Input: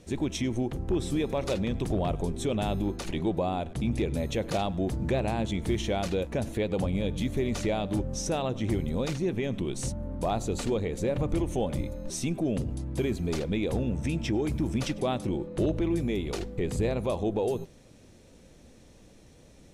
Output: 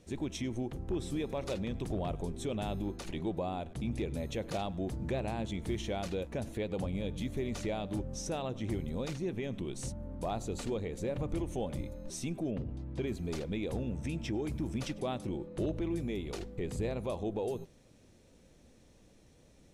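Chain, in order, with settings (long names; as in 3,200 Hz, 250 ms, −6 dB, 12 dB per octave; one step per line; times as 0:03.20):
0:12.50–0:13.06: low-pass filter 2,200 Hz → 5,200 Hz 12 dB per octave
level −7 dB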